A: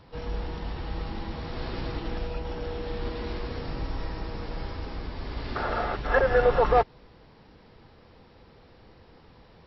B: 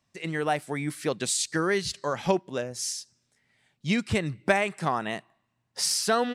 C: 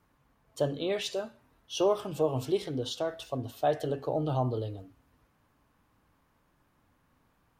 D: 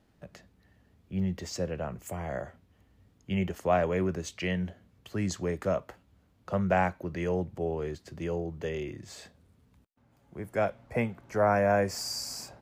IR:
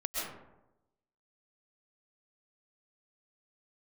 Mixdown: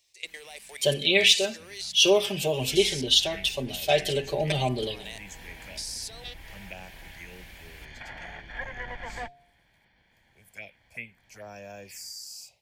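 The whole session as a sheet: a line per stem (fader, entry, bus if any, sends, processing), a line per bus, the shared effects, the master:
-14.5 dB, 2.45 s, no send, minimum comb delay 1.2 ms; polynomial smoothing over 41 samples; de-hum 140.9 Hz, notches 5
-6.5 dB, 0.00 s, no send, steep high-pass 410 Hz; band shelf 2100 Hz -11 dB 1.3 oct; level quantiser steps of 21 dB
+1.0 dB, 0.25 s, no send, de-esser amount 70%; comb 5.1 ms, depth 99%
-19.5 dB, 0.00 s, no send, envelope phaser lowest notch 220 Hz, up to 2100 Hz, full sweep at -21 dBFS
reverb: off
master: resonant high shelf 1700 Hz +11 dB, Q 3; mismatched tape noise reduction encoder only

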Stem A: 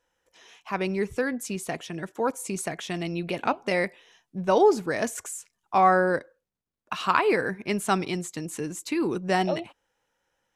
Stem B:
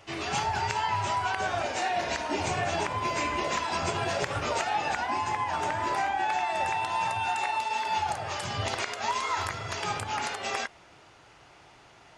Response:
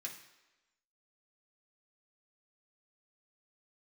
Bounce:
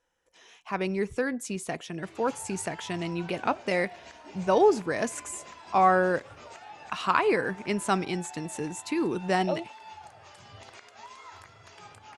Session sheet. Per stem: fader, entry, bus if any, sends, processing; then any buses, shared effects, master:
-1.5 dB, 0.00 s, no send, Chebyshev low-pass 11000 Hz, order 5
-17.5 dB, 1.95 s, no send, dry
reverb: off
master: dry

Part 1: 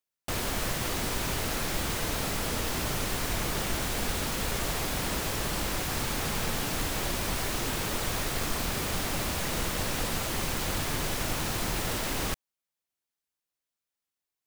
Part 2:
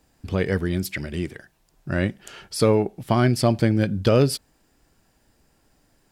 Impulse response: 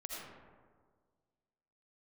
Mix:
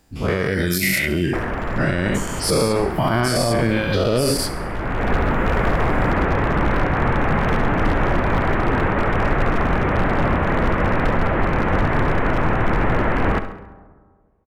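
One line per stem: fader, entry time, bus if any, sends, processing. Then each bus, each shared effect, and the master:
+0.5 dB, 1.05 s, send -12.5 dB, echo send -11.5 dB, inverse Chebyshev low-pass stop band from 4900 Hz, stop band 50 dB; wavefolder -25 dBFS
-0.5 dB, 0.00 s, no send, echo send -15 dB, spectral dilation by 0.24 s; reverb removal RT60 1.3 s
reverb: on, RT60 1.7 s, pre-delay 40 ms
echo: feedback echo 68 ms, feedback 50%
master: AGC gain up to 13 dB; limiter -9 dBFS, peak gain reduction 8 dB

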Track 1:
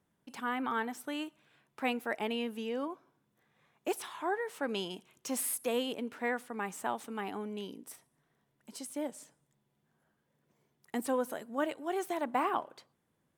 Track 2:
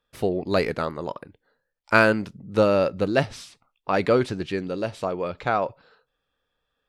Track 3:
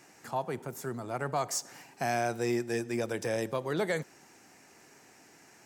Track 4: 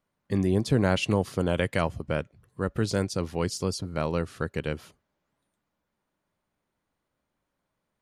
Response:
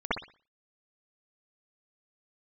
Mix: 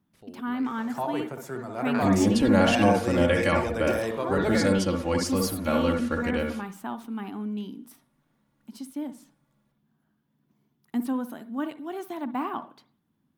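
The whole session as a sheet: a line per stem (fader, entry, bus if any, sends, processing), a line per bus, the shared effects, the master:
+2.5 dB, 0.00 s, send -23.5 dB, ten-band EQ 250 Hz +9 dB, 500 Hz -12 dB, 2000 Hz -6 dB, 8000 Hz -11 dB
-16.0 dB, 0.00 s, no send, level quantiser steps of 16 dB
+1.0 dB, 0.65 s, send -14 dB, tone controls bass -3 dB, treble -5 dB
-2.0 dB, 1.70 s, send -11.5 dB, comb 3.6 ms, depth 97%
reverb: on, pre-delay 57 ms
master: dry

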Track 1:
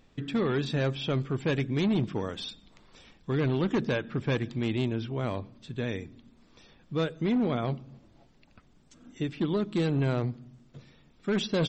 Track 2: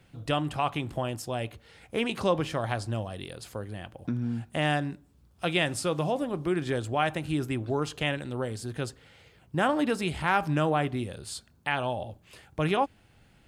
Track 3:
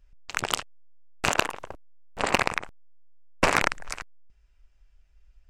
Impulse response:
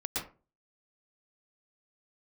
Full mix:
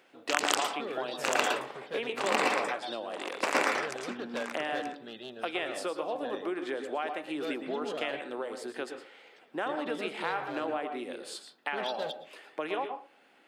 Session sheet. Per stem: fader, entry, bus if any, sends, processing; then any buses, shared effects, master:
-5.0 dB, 0.45 s, send -19.5 dB, no echo send, fixed phaser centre 1500 Hz, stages 8; overloaded stage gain 26.5 dB
+1.0 dB, 0.00 s, send -8.5 dB, no echo send, tone controls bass -11 dB, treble -10 dB; compressor 4:1, threshold -35 dBFS, peak gain reduction 13.5 dB
-1.0 dB, 0.00 s, send -9.5 dB, echo send -18.5 dB, backwards sustainer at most 100 dB/s; auto duck -16 dB, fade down 1.70 s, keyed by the second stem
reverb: on, RT60 0.35 s, pre-delay 0.108 s
echo: echo 0.931 s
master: HPF 260 Hz 24 dB/oct

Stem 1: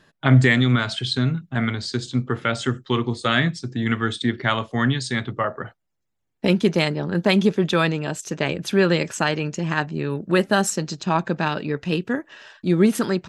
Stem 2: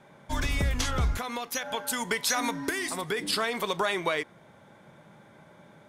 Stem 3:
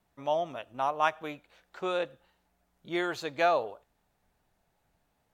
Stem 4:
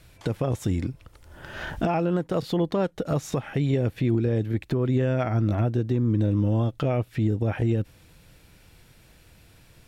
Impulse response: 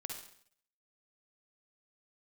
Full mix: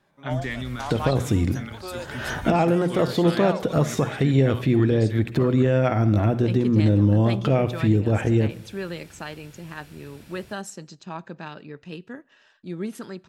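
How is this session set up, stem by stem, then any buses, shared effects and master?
-14.5 dB, 0.00 s, send -22 dB, dry
-13.5 dB, 0.00 s, no send, dry
-4.5 dB, 0.00 s, no send, dry
+2.0 dB, 0.65 s, send -4.5 dB, HPF 49 Hz; notches 60/120/180 Hz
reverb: on, RT60 0.60 s, pre-delay 46 ms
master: dry

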